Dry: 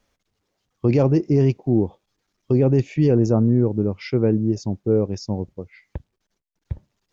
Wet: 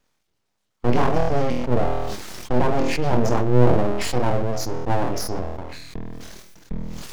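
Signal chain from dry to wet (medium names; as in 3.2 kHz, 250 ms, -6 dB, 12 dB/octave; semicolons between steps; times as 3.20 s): flutter echo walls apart 4.2 m, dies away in 0.36 s; full-wave rectifier; decay stretcher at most 31 dB/s; trim -1.5 dB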